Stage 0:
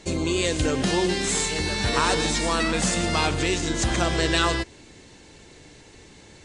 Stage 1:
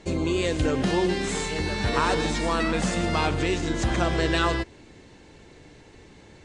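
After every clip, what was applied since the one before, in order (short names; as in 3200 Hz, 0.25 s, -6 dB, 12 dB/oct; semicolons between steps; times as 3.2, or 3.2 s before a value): high shelf 3900 Hz -11.5 dB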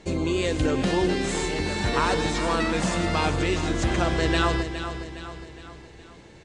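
feedback echo 0.413 s, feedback 49%, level -10 dB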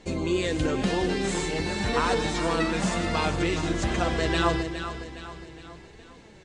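flange 0.98 Hz, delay 3.8 ms, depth 2.7 ms, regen +55%; gain +2.5 dB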